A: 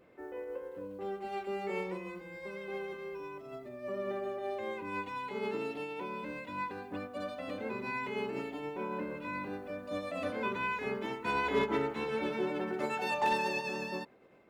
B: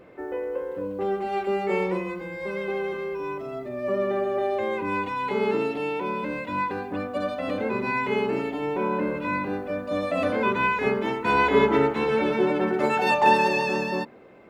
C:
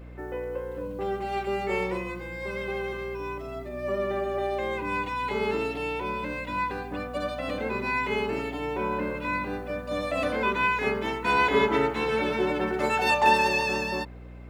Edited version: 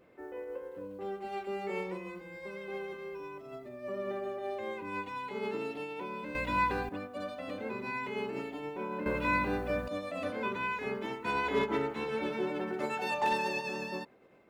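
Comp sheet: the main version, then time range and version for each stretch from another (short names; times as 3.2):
A
6.35–6.89 from C
9.06–9.88 from C
not used: B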